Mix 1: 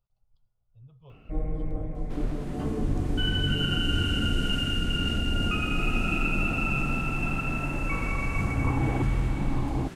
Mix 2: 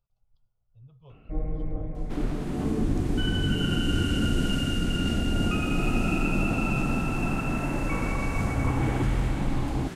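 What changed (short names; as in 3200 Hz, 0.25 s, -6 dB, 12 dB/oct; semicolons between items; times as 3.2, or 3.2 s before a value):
first sound: add air absorption 230 m; second sound +4.5 dB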